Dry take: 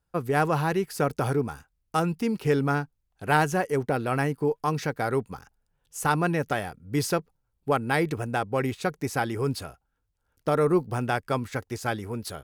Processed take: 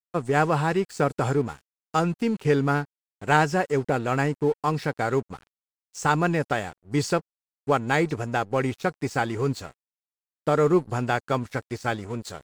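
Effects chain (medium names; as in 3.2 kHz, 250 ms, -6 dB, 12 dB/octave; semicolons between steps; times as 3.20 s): knee-point frequency compression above 3.9 kHz 1.5:1; crossover distortion -45 dBFS; trim +2.5 dB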